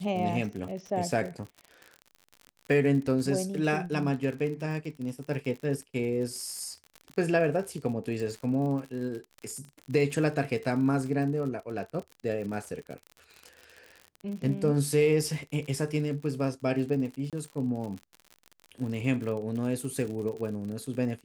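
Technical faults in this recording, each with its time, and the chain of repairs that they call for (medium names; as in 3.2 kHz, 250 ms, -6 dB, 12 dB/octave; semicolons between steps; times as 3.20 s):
crackle 58 per s -36 dBFS
17.30–17.33 s: dropout 27 ms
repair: de-click; interpolate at 17.30 s, 27 ms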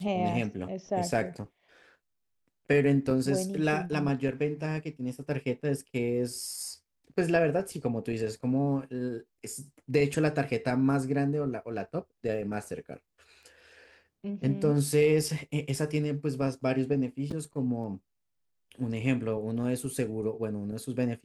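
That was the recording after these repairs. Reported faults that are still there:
nothing left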